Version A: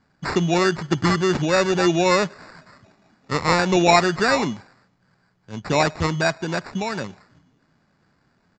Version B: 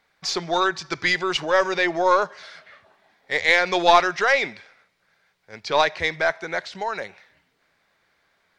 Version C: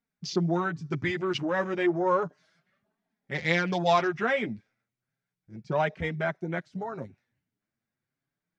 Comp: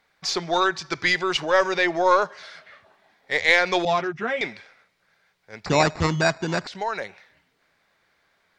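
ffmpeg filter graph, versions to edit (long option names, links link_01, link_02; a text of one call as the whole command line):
ffmpeg -i take0.wav -i take1.wav -i take2.wav -filter_complex "[1:a]asplit=3[link_01][link_02][link_03];[link_01]atrim=end=3.852[link_04];[2:a]atrim=start=3.848:end=4.412[link_05];[link_02]atrim=start=4.408:end=5.662[link_06];[0:a]atrim=start=5.658:end=6.672[link_07];[link_03]atrim=start=6.668[link_08];[link_04][link_05]acrossfade=duration=0.004:curve1=hsin:curve2=hsin[link_09];[link_09][link_06]acrossfade=duration=0.004:curve1=hsin:curve2=hsin[link_10];[link_10][link_07]acrossfade=duration=0.004:curve1=hsin:curve2=hsin[link_11];[link_11][link_08]acrossfade=duration=0.004:curve1=hsin:curve2=hsin" out.wav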